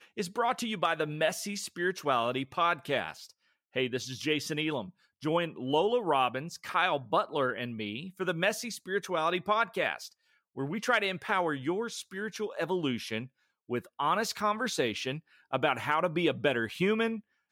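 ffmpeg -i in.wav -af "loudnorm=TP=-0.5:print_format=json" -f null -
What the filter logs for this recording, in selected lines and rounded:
"input_i" : "-30.9",
"input_tp" : "-13.1",
"input_lra" : "2.2",
"input_thresh" : "-41.2",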